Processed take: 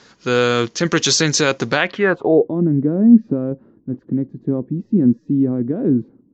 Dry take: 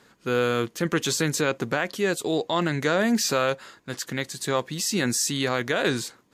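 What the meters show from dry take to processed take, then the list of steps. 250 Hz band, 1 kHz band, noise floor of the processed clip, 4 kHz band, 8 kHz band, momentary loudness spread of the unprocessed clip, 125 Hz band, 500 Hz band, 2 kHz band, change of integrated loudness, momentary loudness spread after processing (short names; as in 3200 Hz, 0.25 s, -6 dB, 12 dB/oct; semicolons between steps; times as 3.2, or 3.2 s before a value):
+12.0 dB, +2.5 dB, -56 dBFS, +5.5 dB, +3.5 dB, 8 LU, +9.0 dB, +6.0 dB, +4.5 dB, +8.0 dB, 10 LU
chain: downsampling 16000 Hz; low-pass sweep 5700 Hz -> 270 Hz, 1.67–2.56; gain +7 dB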